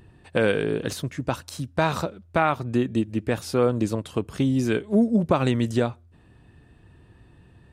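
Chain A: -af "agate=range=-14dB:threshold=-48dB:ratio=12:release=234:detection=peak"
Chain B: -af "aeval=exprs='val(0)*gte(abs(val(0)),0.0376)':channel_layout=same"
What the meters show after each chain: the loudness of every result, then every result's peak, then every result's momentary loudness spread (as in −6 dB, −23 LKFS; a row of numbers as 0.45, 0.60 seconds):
−24.5, −25.0 LKFS; −6.0, −6.0 dBFS; 9, 10 LU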